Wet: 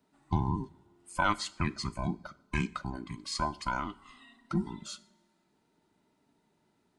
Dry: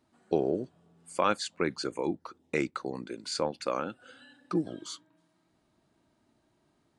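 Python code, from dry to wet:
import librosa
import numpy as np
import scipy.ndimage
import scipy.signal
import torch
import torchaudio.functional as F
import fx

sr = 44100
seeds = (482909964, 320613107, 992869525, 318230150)

y = fx.band_invert(x, sr, width_hz=500)
y = fx.rev_double_slope(y, sr, seeds[0], early_s=0.54, late_s=1.7, knee_db=-18, drr_db=15.5)
y = y * librosa.db_to_amplitude(-1.5)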